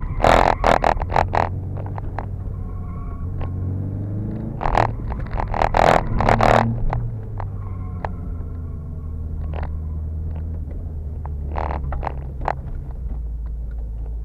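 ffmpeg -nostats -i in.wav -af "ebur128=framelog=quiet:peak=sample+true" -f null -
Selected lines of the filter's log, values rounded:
Integrated loudness:
  I:         -23.2 LUFS
  Threshold: -33.2 LUFS
Loudness range:
  LRA:         9.6 LU
  Threshold: -43.8 LUFS
  LRA low:   -29.4 LUFS
  LRA high:  -19.9 LUFS
Sample peak:
  Peak:       -3.1 dBFS
True peak:
  Peak:       -3.1 dBFS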